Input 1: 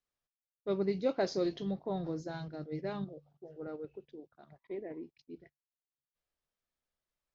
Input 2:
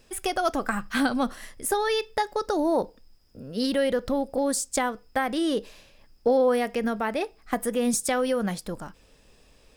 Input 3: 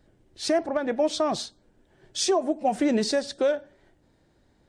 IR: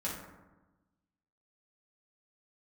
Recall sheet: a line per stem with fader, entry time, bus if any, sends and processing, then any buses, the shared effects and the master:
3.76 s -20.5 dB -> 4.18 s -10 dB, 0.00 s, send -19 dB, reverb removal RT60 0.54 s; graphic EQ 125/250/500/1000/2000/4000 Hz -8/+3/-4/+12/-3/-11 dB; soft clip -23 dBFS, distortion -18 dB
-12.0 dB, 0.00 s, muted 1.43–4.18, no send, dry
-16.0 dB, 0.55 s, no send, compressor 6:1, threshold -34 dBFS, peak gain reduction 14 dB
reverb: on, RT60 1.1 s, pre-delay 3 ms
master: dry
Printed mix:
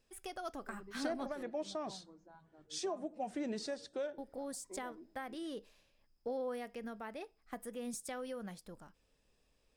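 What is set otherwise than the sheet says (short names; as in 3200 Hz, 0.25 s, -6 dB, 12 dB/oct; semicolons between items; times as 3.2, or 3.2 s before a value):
stem 2 -12.0 dB -> -18.0 dB; stem 3: missing compressor 6:1, threshold -34 dBFS, peak gain reduction 14 dB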